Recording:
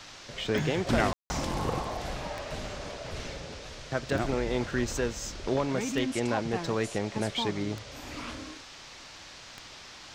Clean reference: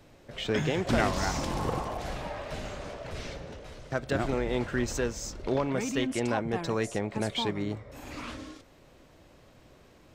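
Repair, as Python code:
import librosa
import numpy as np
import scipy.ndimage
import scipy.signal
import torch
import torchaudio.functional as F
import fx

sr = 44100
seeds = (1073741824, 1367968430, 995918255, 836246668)

y = fx.fix_declick_ar(x, sr, threshold=10.0)
y = fx.fix_ambience(y, sr, seeds[0], print_start_s=8.64, print_end_s=9.14, start_s=1.13, end_s=1.3)
y = fx.noise_reduce(y, sr, print_start_s=8.64, print_end_s=9.14, reduce_db=9.0)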